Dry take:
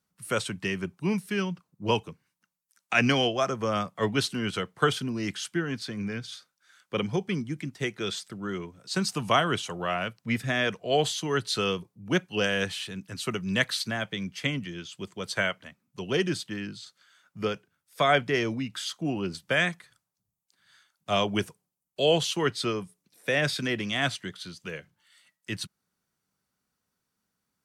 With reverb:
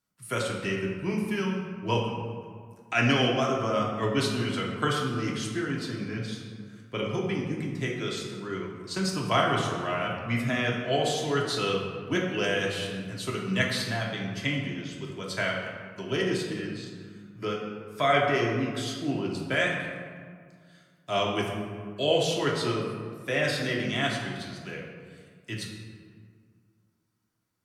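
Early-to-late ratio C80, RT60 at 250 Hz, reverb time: 4.0 dB, 2.4 s, 2.0 s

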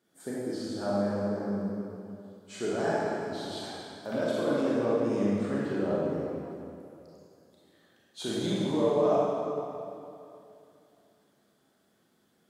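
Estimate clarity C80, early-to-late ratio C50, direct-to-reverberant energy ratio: −2.5 dB, −5.0 dB, −7.5 dB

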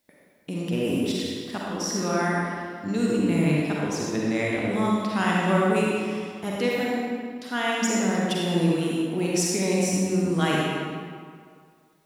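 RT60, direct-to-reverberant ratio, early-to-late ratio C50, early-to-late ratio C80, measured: 2.0 s, −5.0 dB, −4.0 dB, −1.5 dB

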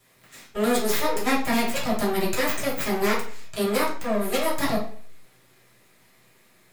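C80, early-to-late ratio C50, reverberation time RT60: 11.0 dB, 6.0 dB, 0.50 s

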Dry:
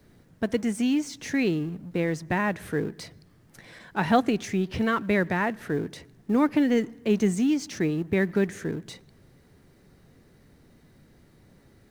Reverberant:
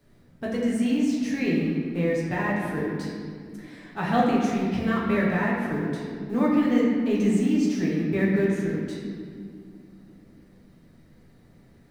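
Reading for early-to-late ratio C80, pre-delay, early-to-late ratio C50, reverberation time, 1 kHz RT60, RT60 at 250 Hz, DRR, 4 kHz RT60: 2.0 dB, 6 ms, 0.5 dB, 2.2 s, 1.9 s, 4.0 s, −6.0 dB, 1.3 s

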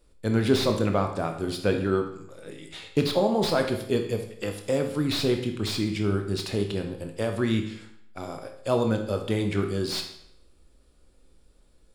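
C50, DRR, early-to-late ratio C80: 7.5 dB, 4.0 dB, 10.5 dB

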